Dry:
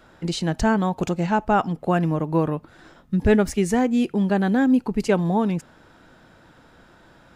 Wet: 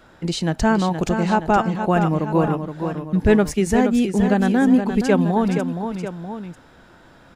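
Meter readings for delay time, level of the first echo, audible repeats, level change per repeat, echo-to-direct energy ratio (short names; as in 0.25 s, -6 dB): 0.471 s, -7.5 dB, 2, -4.5 dB, -6.0 dB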